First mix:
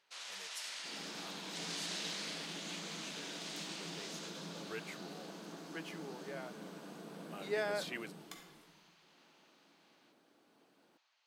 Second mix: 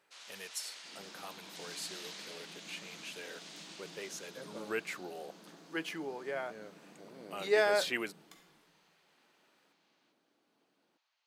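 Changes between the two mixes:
speech +8.5 dB; first sound -5.0 dB; second sound -7.0 dB

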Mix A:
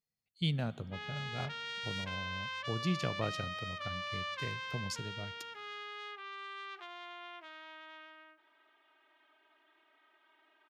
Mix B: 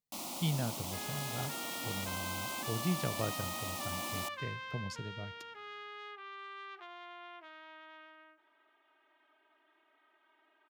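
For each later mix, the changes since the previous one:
first sound: unmuted; master: add treble shelf 2.8 kHz -8 dB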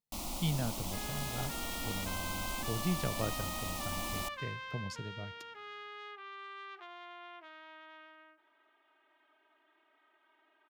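first sound: remove high-pass 220 Hz 12 dB/octave

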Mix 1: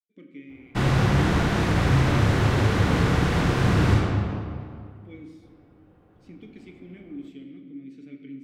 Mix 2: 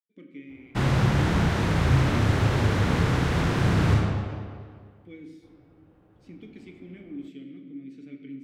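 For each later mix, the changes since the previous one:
background: send off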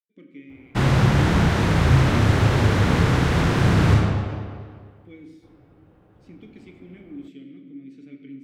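background +4.5 dB

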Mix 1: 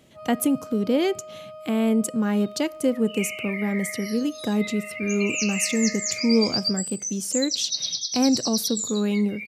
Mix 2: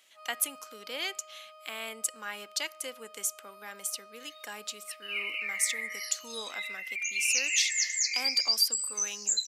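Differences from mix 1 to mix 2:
second sound: entry +1.95 s; master: add high-pass 1.5 kHz 12 dB/octave

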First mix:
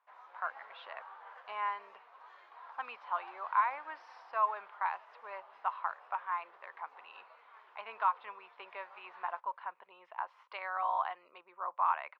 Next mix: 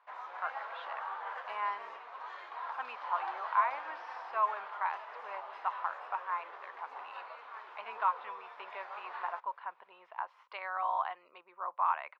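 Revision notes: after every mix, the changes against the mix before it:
background +11.0 dB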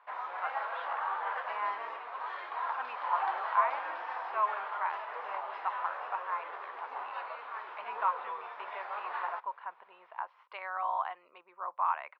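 background +6.0 dB; master: add low-pass 3.6 kHz 12 dB/octave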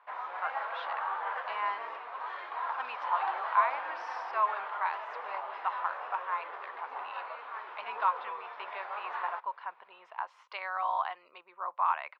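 speech: remove distance through air 360 m

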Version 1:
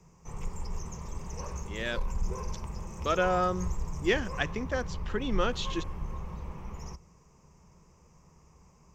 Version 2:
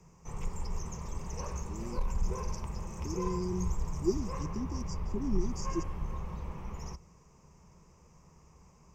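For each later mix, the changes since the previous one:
speech: add brick-wall FIR band-stop 410–4600 Hz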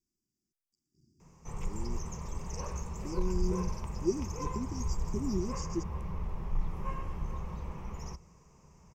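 background: entry +1.20 s

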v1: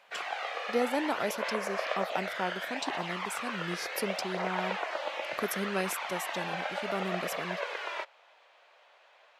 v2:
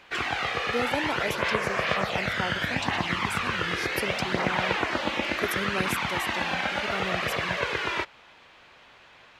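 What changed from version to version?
background: remove ladder high-pass 510 Hz, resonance 50%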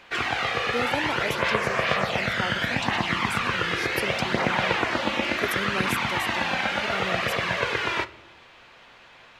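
reverb: on, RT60 0.75 s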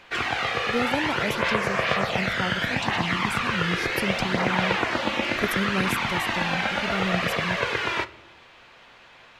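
speech: remove high-pass 320 Hz 12 dB/octave

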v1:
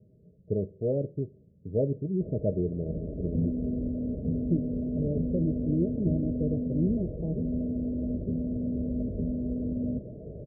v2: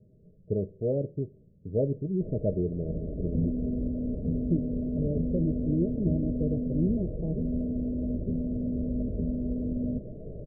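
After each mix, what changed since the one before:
master: remove high-pass 50 Hz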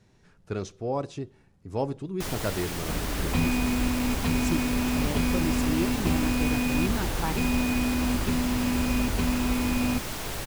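speech -5.5 dB; master: remove rippled Chebyshev low-pass 640 Hz, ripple 6 dB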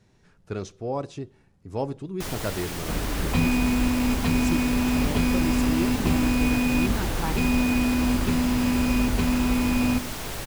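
reverb: on, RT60 1.0 s

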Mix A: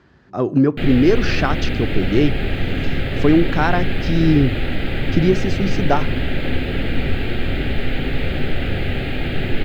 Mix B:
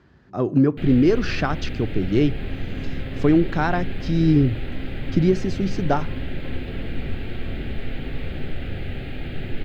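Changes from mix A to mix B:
speech -4.5 dB; first sound -11.5 dB; master: add bass shelf 270 Hz +4.5 dB

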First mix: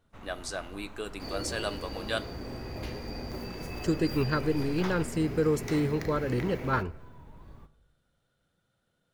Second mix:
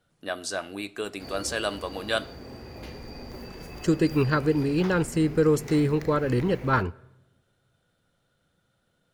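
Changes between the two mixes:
speech +5.0 dB; first sound: muted; second sound: send off

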